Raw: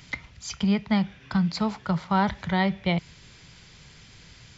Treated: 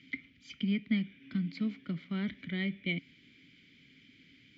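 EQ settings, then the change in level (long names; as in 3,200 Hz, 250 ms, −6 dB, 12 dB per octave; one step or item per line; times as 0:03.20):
formant filter i
high-shelf EQ 4,400 Hz −7.5 dB
+5.5 dB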